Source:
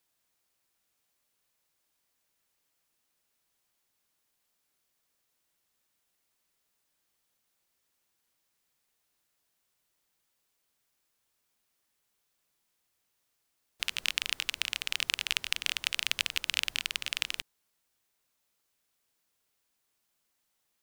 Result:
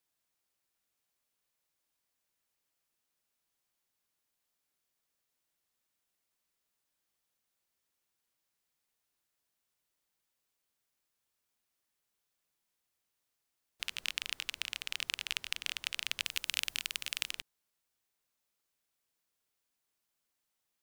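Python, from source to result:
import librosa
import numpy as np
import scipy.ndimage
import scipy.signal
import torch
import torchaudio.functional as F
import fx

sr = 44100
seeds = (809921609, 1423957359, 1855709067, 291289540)

y = fx.high_shelf(x, sr, hz=6400.0, db=8.5, at=(16.25, 17.31))
y = y * librosa.db_to_amplitude(-6.0)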